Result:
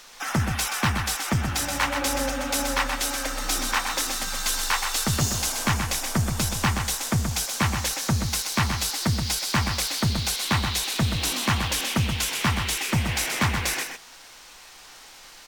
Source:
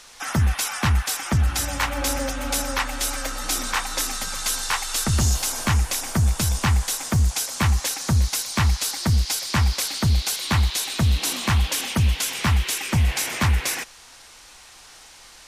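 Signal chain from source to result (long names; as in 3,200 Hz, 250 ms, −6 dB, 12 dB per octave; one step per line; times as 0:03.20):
parametric band 66 Hz −13.5 dB 0.85 octaves
single-tap delay 128 ms −6.5 dB
linearly interpolated sample-rate reduction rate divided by 2×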